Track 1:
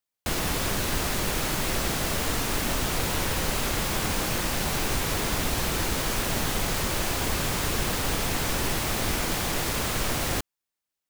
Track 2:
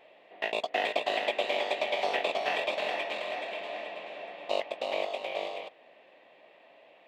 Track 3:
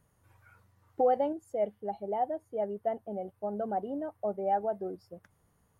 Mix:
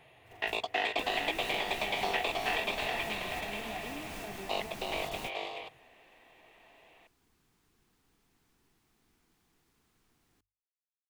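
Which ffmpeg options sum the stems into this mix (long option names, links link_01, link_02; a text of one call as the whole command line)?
ffmpeg -i stem1.wav -i stem2.wav -i stem3.wav -filter_complex "[0:a]equalizer=frequency=280:width=0.73:gain=4.5,volume=-15dB[link_01];[1:a]highpass=220,volume=0dB[link_02];[2:a]equalizer=frequency=130:width_type=o:width=0.29:gain=11.5,asoftclip=type=tanh:threshold=-30dB,volume=-1.5dB,asplit=2[link_03][link_04];[link_04]apad=whole_len=489148[link_05];[link_01][link_05]sidechaingate=range=-31dB:threshold=-57dB:ratio=16:detection=peak[link_06];[link_06][link_03]amix=inputs=2:normalize=0,bandreject=frequency=50:width_type=h:width=6,bandreject=frequency=100:width_type=h:width=6,acompressor=threshold=-39dB:ratio=6,volume=0dB[link_07];[link_02][link_07]amix=inputs=2:normalize=0,equalizer=frequency=570:width_type=o:width=0.28:gain=-14" out.wav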